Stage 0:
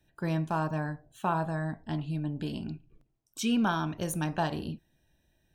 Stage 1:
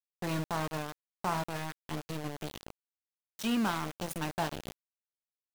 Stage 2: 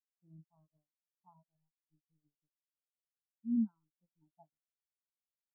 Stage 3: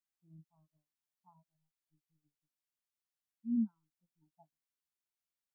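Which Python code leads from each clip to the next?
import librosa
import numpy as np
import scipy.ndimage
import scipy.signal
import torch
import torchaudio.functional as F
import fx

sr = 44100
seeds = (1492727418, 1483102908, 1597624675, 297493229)

y1 = np.where(np.abs(x) >= 10.0 ** (-29.5 / 20.0), x, 0.0)
y1 = y1 * librosa.db_to_amplitude(-3.0)
y2 = fx.spectral_expand(y1, sr, expansion=4.0)
y2 = y2 * librosa.db_to_amplitude(-6.5)
y3 = fx.peak_eq(y2, sr, hz=500.0, db=-6.5, octaves=0.76)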